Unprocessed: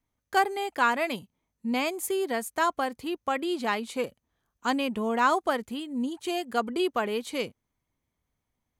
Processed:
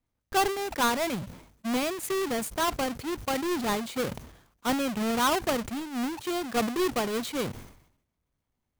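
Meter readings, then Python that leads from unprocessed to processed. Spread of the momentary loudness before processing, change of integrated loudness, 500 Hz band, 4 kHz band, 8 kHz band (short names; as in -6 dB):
9 LU, -0.5 dB, -0.5 dB, +2.0 dB, +5.5 dB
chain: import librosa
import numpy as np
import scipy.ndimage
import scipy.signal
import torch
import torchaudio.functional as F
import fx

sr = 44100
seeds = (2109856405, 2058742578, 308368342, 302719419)

y = fx.halfwave_hold(x, sr)
y = fx.dynamic_eq(y, sr, hz=120.0, q=0.89, threshold_db=-40.0, ratio=4.0, max_db=5)
y = fx.sustainer(y, sr, db_per_s=81.0)
y = y * 10.0 ** (-5.5 / 20.0)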